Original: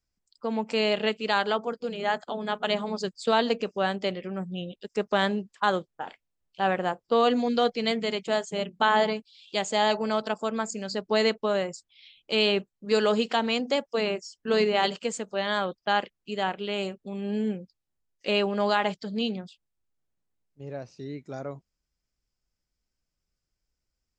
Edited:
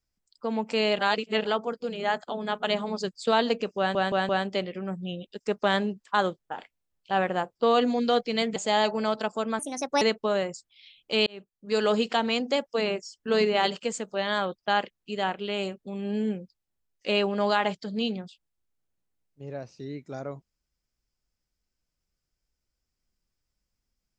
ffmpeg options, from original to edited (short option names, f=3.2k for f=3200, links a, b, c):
-filter_complex "[0:a]asplit=10[a][b][c][d][e][f][g][h][i][j];[a]atrim=end=0.992[k];[b]atrim=start=0.988:end=1.452,asetpts=PTS-STARTPTS,areverse[l];[c]atrim=start=1.448:end=3.952[m];[d]atrim=start=3.778:end=3.952[n];[e]atrim=start=3.778:end=3.952[o];[f]atrim=start=3.778:end=8.052[p];[g]atrim=start=9.618:end=10.654[q];[h]atrim=start=10.65:end=11.21,asetpts=PTS-STARTPTS,asetrate=58212,aresample=44100,atrim=end_sample=18709,asetpts=PTS-STARTPTS[r];[i]atrim=start=11.206:end=12.46,asetpts=PTS-STARTPTS,afade=t=out:st=1.25:d=0.004:c=hsin[s];[j]atrim=start=12.46,asetpts=PTS-STARTPTS,afade=t=in:d=0.65[t];[k][l]acrossfade=d=0.004:c1=hsin:c2=hsin[u];[u][m]acrossfade=d=0.004:c1=hsin:c2=hsin[v];[v][n]acrossfade=d=0.004:c1=hsin:c2=hsin[w];[w][o]acrossfade=d=0.004:c1=hsin:c2=hsin[x];[x][p]acrossfade=d=0.004:c1=hsin:c2=hsin[y];[y][q]acrossfade=d=0.004:c1=hsin:c2=hsin[z];[z][r]acrossfade=d=0.004:c1=hsin:c2=hsin[aa];[s][t]concat=n=2:v=0:a=1[ab];[aa][ab]acrossfade=d=0.004:c1=hsin:c2=hsin"